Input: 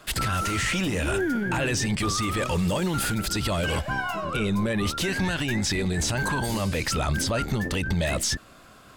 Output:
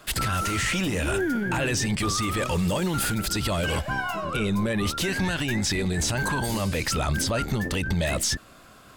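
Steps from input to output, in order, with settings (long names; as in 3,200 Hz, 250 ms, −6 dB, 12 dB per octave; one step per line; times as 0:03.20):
high-shelf EQ 11,000 Hz +4 dB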